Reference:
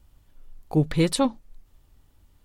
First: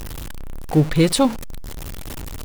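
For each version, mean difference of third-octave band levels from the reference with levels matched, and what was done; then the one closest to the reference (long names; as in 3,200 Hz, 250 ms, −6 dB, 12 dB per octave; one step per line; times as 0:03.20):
5.5 dB: converter with a step at zero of −29.5 dBFS
level +4.5 dB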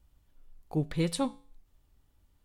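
1.5 dB: tuned comb filter 56 Hz, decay 0.45 s, harmonics odd, mix 50%
level −3.5 dB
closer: second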